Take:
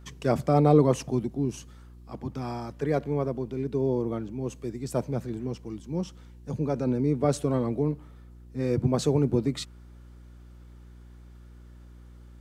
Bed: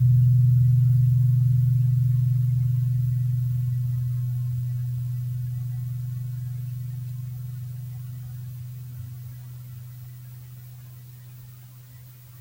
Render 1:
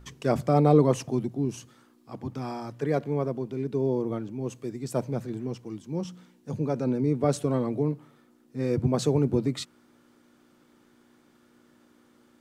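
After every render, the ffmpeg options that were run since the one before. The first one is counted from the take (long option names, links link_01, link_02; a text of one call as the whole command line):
ffmpeg -i in.wav -af "bandreject=frequency=60:width_type=h:width=4,bandreject=frequency=120:width_type=h:width=4,bandreject=frequency=180:width_type=h:width=4" out.wav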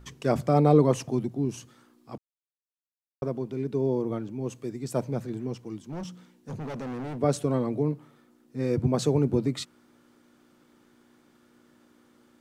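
ffmpeg -i in.wav -filter_complex "[0:a]asettb=1/sr,asplit=3[link_01][link_02][link_03];[link_01]atrim=end=5.774[link_04];[link_02]atrim=start=5.77:end=7.19,asetpts=PTS-STARTPTS,afade=type=in:duration=0.004:curve=qsin,afade=type=out:start_time=1.416:duration=0.004:curve=qsin,asoftclip=type=hard:threshold=-32.5dB[link_05];[link_03]atrim=start=7.186[link_06];[link_04][link_05]acrossfade=duration=0.004:curve1=hsin:curve2=qsin[link_07];[link_07][link_06]acrossfade=duration=0.004:curve1=qsin:curve2=hsin,asplit=3[link_08][link_09][link_10];[link_08]atrim=end=2.18,asetpts=PTS-STARTPTS,afade=type=out:start_time=2.176:duration=0.004:curve=hsin[link_11];[link_09]atrim=start=2.18:end=3.22,asetpts=PTS-STARTPTS,volume=0[link_12];[link_10]atrim=start=3.22,asetpts=PTS-STARTPTS,afade=type=in:duration=0.004:curve=hsin[link_13];[link_11][link_12][link_13]concat=n=3:v=0:a=1" out.wav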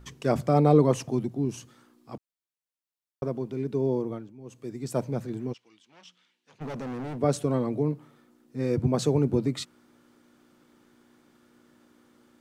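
ffmpeg -i in.wav -filter_complex "[0:a]asplit=3[link_01][link_02][link_03];[link_01]afade=type=out:start_time=5.52:duration=0.02[link_04];[link_02]bandpass=frequency=3000:width_type=q:width=1.5,afade=type=in:start_time=5.52:duration=0.02,afade=type=out:start_time=6.6:duration=0.02[link_05];[link_03]afade=type=in:start_time=6.6:duration=0.02[link_06];[link_04][link_05][link_06]amix=inputs=3:normalize=0,asplit=3[link_07][link_08][link_09];[link_07]atrim=end=4.33,asetpts=PTS-STARTPTS,afade=type=out:start_time=3.96:duration=0.37:silence=0.223872[link_10];[link_08]atrim=start=4.33:end=4.44,asetpts=PTS-STARTPTS,volume=-13dB[link_11];[link_09]atrim=start=4.44,asetpts=PTS-STARTPTS,afade=type=in:duration=0.37:silence=0.223872[link_12];[link_10][link_11][link_12]concat=n=3:v=0:a=1" out.wav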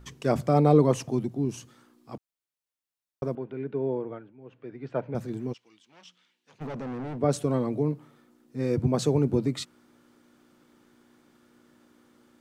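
ffmpeg -i in.wav -filter_complex "[0:a]asettb=1/sr,asplit=3[link_01][link_02][link_03];[link_01]atrim=end=3.354[link_04];[link_02]atrim=start=3.35:end=5.15,asetpts=PTS-STARTPTS,afade=type=in:duration=0.004:curve=qsin,afade=type=out:start_time=1.796:duration=0.004:curve=qsin,highpass=160,equalizer=frequency=220:width_type=q:width=4:gain=-8,equalizer=frequency=340:width_type=q:width=4:gain=-4,equalizer=frequency=1100:width_type=q:width=4:gain=-3,equalizer=frequency=1500:width_type=q:width=4:gain=6,lowpass=frequency=2900:width=0.5412,lowpass=frequency=2900:width=1.3066[link_05];[link_03]atrim=start=5.146[link_06];[link_04][link_05]acrossfade=duration=0.004:curve1=hsin:curve2=qsin[link_07];[link_07][link_06]acrossfade=duration=0.004:curve1=qsin:curve2=hsin,asettb=1/sr,asplit=3[link_08][link_09][link_10];[link_08]atrim=end=6.674[link_11];[link_09]atrim=start=6.67:end=7.31,asetpts=PTS-STARTPTS,afade=type=in:duration=0.004:curve=qsin,afade=type=out:start_time=0.636:duration=0.004:curve=qsin,lowpass=frequency=3000:poles=1[link_12];[link_10]atrim=start=7.306[link_13];[link_11][link_12]acrossfade=duration=0.004:curve1=hsin:curve2=qsin[link_14];[link_14][link_13]acrossfade=duration=0.004:curve1=qsin:curve2=hsin" out.wav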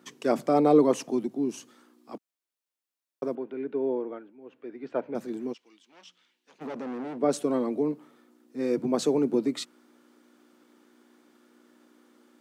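ffmpeg -i in.wav -af "highpass=frequency=220:width=0.5412,highpass=frequency=220:width=1.3066,equalizer=frequency=300:width=1.5:gain=2" out.wav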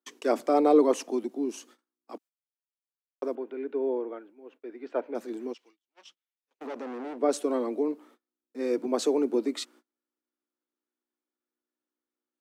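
ffmpeg -i in.wav -af "agate=range=-32dB:threshold=-53dB:ratio=16:detection=peak,highpass=frequency=270:width=0.5412,highpass=frequency=270:width=1.3066" out.wav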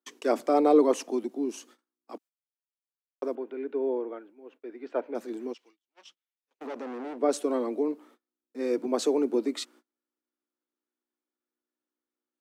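ffmpeg -i in.wav -af anull out.wav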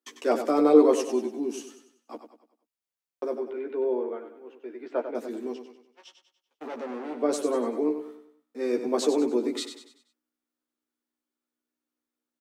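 ffmpeg -i in.wav -filter_complex "[0:a]asplit=2[link_01][link_02];[link_02]adelay=13,volume=-4.5dB[link_03];[link_01][link_03]amix=inputs=2:normalize=0,aecho=1:1:96|192|288|384|480:0.355|0.153|0.0656|0.0282|0.0121" out.wav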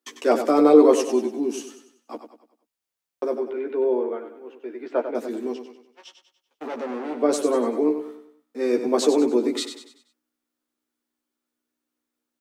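ffmpeg -i in.wav -af "volume=5dB,alimiter=limit=-3dB:level=0:latency=1" out.wav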